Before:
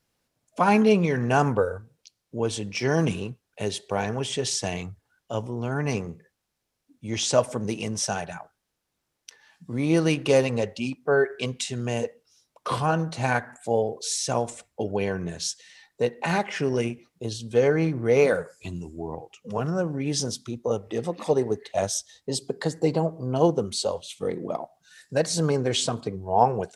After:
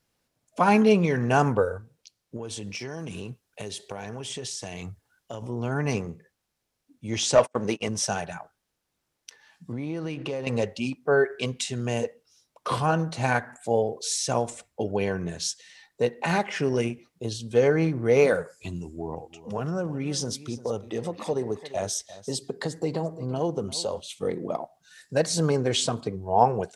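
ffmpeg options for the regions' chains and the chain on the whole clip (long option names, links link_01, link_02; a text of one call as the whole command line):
ffmpeg -i in.wav -filter_complex "[0:a]asettb=1/sr,asplit=3[link_01][link_02][link_03];[link_01]atrim=end=2.364[link_04];[link_02]atrim=start=2.36:end=5.42,asetpts=PTS-STARTPTS,afade=type=in:duration=0.004:curve=qsin,afade=type=out:start_time=3.056:duration=0.004:curve=qsin,highshelf=frequency=5000:gain=5,acompressor=threshold=-31dB:ratio=8:attack=3.2:release=140:knee=1:detection=peak[link_05];[link_03]atrim=start=5.416[link_06];[link_04][link_05]acrossfade=duration=0.004:curve1=hsin:curve2=qsin[link_07];[link_07][link_06]acrossfade=duration=0.004:curve1=qsin:curve2=hsin,asettb=1/sr,asplit=3[link_08][link_09][link_10];[link_08]atrim=end=7.354[link_11];[link_09]atrim=start=7.35:end=7.89,asetpts=PTS-STARTPTS,afade=type=in:duration=0.004:curve=qsin,afade=type=out:start_time=0.536:duration=0.004:curve=qsin,agate=range=-40dB:threshold=-32dB:ratio=16:release=100:detection=peak,asplit=2[link_12][link_13];[link_13]highpass=frequency=720:poles=1,volume=14dB,asoftclip=type=tanh:threshold=-6dB[link_14];[link_12][link_14]amix=inputs=2:normalize=0,lowpass=frequency=2300:poles=1,volume=-6dB[link_15];[link_10]atrim=start=7.886[link_16];[link_11][link_15]acrossfade=duration=0.004:curve1=hsin:curve2=qsin[link_17];[link_17][link_16]acrossfade=duration=0.004:curve1=qsin:curve2=hsin,asettb=1/sr,asplit=3[link_18][link_19][link_20];[link_18]atrim=end=9.724[link_21];[link_19]atrim=start=9.72:end=10.47,asetpts=PTS-STARTPTS,afade=type=in:duration=0.004:curve=qsin,afade=type=out:start_time=0.746:duration=0.004:curve=qsin,aemphasis=mode=reproduction:type=50fm,acompressor=threshold=-28dB:ratio=6:attack=3.2:release=140:knee=1:detection=peak[link_22];[link_20]atrim=start=10.466[link_23];[link_21][link_22]acrossfade=duration=0.004:curve1=hsin:curve2=qsin[link_24];[link_24][link_23]acrossfade=duration=0.004:curve1=qsin:curve2=hsin,asettb=1/sr,asplit=3[link_25][link_26][link_27];[link_25]atrim=end=18.824[link_28];[link_26]atrim=start=18.82:end=24,asetpts=PTS-STARTPTS,afade=type=in:duration=0.004:curve=qsin,afade=type=out:start_time=5.176:duration=0.004:curve=qsin,acompressor=threshold=-26dB:ratio=2:attack=3.2:release=140:knee=1:detection=peak,aecho=1:1:346:0.15,atrim=end_sample=228438[link_29];[link_27]atrim=start=23.996[link_30];[link_28][link_29]acrossfade=duration=0.004:curve1=hsin:curve2=qsin[link_31];[link_31][link_30]acrossfade=duration=0.004:curve1=qsin:curve2=hsin" out.wav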